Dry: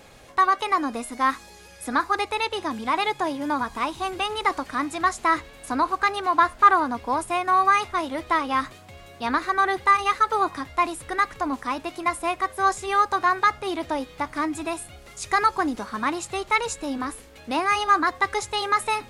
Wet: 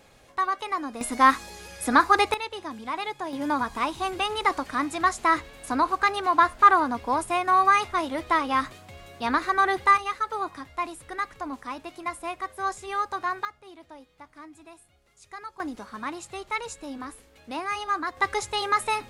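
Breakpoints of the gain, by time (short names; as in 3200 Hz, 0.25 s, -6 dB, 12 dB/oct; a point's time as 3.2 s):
-6.5 dB
from 1.01 s +4.5 dB
from 2.34 s -7.5 dB
from 3.33 s -0.5 dB
from 9.98 s -7.5 dB
from 13.45 s -19.5 dB
from 15.6 s -8 dB
from 18.17 s -1.5 dB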